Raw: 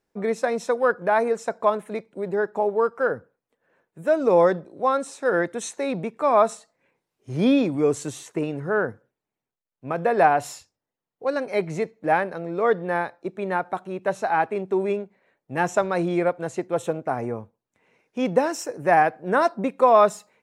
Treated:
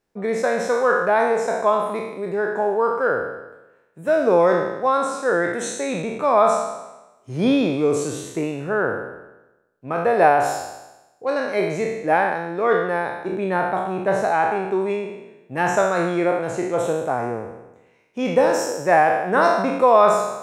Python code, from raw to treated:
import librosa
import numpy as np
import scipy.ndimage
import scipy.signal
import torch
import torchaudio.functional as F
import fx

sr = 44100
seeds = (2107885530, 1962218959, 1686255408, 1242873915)

y = fx.spec_trails(x, sr, decay_s=1.02)
y = fx.low_shelf(y, sr, hz=350.0, db=6.5, at=(13.32, 14.25))